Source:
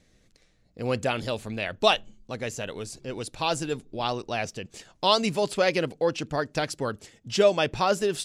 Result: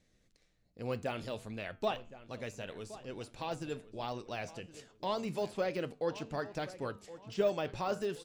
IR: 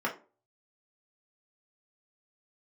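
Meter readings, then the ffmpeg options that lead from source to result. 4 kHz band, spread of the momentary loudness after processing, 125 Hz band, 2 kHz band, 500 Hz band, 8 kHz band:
-17.5 dB, 11 LU, -9.5 dB, -13.0 dB, -10.0 dB, -17.0 dB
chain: -filter_complex "[0:a]deesser=0.95,flanger=delay=9.3:depth=3.2:regen=-81:speed=1.2:shape=sinusoidal,asplit=2[s0][s1];[s1]adelay=1068,lowpass=f=2900:p=1,volume=0.168,asplit=2[s2][s3];[s3]adelay=1068,lowpass=f=2900:p=1,volume=0.4,asplit=2[s4][s5];[s5]adelay=1068,lowpass=f=2900:p=1,volume=0.4,asplit=2[s6][s7];[s7]adelay=1068,lowpass=f=2900:p=1,volume=0.4[s8];[s0][s2][s4][s6][s8]amix=inputs=5:normalize=0,volume=0.562"

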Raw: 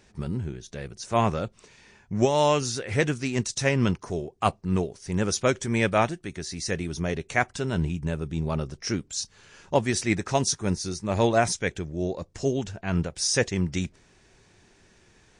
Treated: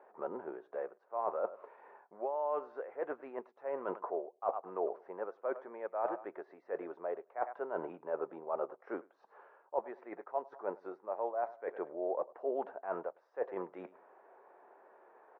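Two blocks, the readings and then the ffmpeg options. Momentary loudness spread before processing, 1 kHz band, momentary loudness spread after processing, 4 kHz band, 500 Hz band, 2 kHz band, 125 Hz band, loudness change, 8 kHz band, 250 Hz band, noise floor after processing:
10 LU, -9.5 dB, 8 LU, under -40 dB, -9.0 dB, -21.0 dB, under -35 dB, -13.0 dB, under -40 dB, -20.5 dB, -71 dBFS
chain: -af "highpass=f=520:w=0.5412,highpass=f=520:w=1.3066,aecho=1:1:104|208:0.075|0.0195,areverse,acompressor=threshold=0.0112:ratio=16,areverse,lowpass=f=1100:w=0.5412,lowpass=f=1100:w=1.3066,volume=2.66"

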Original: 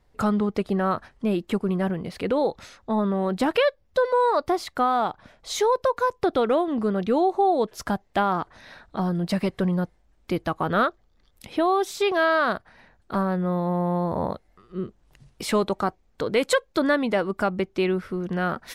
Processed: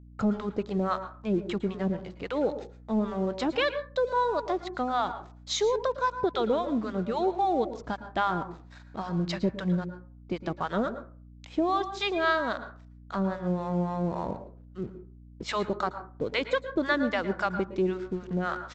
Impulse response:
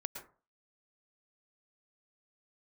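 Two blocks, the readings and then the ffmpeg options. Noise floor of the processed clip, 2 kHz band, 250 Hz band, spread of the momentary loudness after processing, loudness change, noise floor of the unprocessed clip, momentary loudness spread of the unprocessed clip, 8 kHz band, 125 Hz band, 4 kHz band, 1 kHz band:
-50 dBFS, -4.0 dB, -4.5 dB, 11 LU, -5.0 dB, -63 dBFS, 9 LU, -6.0 dB, -4.5 dB, -2.5 dB, -5.0 dB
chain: -filter_complex "[0:a]acrossover=split=640[s0][s1];[s0]aeval=exprs='val(0)*(1-1/2+1/2*cos(2*PI*3.7*n/s))':c=same[s2];[s1]aeval=exprs='val(0)*(1-1/2-1/2*cos(2*PI*3.7*n/s))':c=same[s3];[s2][s3]amix=inputs=2:normalize=0,aresample=16000,aeval=exprs='sgn(val(0))*max(abs(val(0))-0.00237,0)':c=same,aresample=44100,agate=range=0.0224:threshold=0.00112:ratio=3:detection=peak,asplit=2[s4][s5];[1:a]atrim=start_sample=2205[s6];[s5][s6]afir=irnorm=-1:irlink=0,volume=1.12[s7];[s4][s7]amix=inputs=2:normalize=0,adynamicequalizer=threshold=0.00251:dfrequency=3700:dqfactor=6.8:tfrequency=3700:tqfactor=6.8:attack=5:release=100:ratio=0.375:range=2.5:mode=boostabove:tftype=bell,aeval=exprs='val(0)+0.00708*(sin(2*PI*60*n/s)+sin(2*PI*2*60*n/s)/2+sin(2*PI*3*60*n/s)/3+sin(2*PI*4*60*n/s)/4+sin(2*PI*5*60*n/s)/5)':c=same,volume=0.531"

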